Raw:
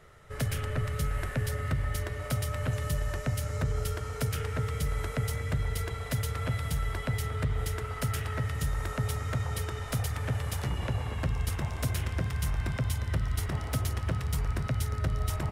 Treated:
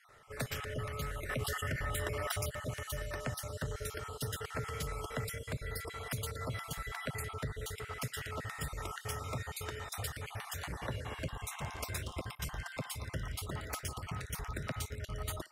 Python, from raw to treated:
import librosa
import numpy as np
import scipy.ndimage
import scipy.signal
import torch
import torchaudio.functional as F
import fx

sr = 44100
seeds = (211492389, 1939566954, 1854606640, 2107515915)

y = fx.spec_dropout(x, sr, seeds[0], share_pct=36)
y = fx.low_shelf(y, sr, hz=220.0, db=-11.0)
y = fx.echo_banded(y, sr, ms=63, feedback_pct=54, hz=1100.0, wet_db=-22.0)
y = fx.env_flatten(y, sr, amount_pct=70, at=(1.29, 2.5))
y = F.gain(torch.from_numpy(y), -1.0).numpy()